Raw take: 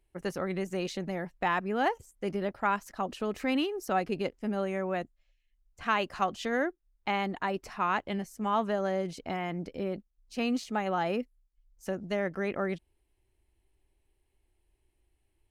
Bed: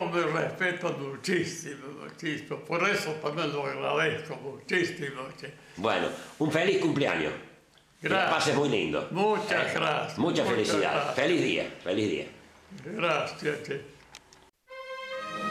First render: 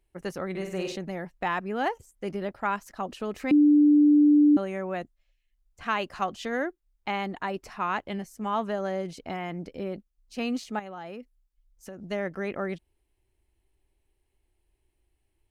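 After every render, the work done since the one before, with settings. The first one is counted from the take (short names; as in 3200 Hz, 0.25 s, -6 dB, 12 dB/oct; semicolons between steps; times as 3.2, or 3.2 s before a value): 0.5–0.96 flutter echo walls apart 8.3 m, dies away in 0.55 s; 3.51–4.57 bleep 295 Hz -14.5 dBFS; 10.79–11.99 compressor 3:1, threshold -39 dBFS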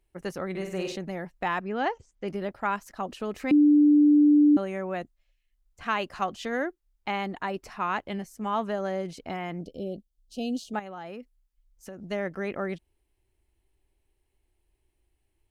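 1.61–2.28 LPF 6000 Hz 24 dB/oct; 9.61–10.74 elliptic band-stop 700–3000 Hz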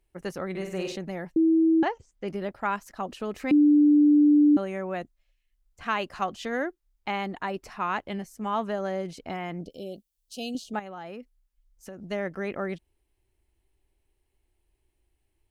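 1.36–1.83 bleep 324 Hz -17 dBFS; 9.7–10.55 tilt +2.5 dB/oct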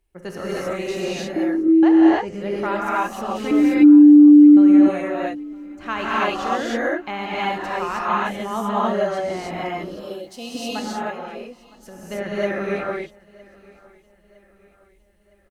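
feedback echo 0.961 s, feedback 48%, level -23.5 dB; non-linear reverb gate 0.34 s rising, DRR -7.5 dB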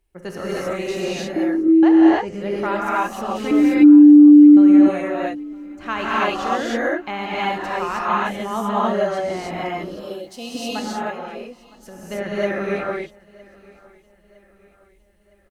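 gain +1 dB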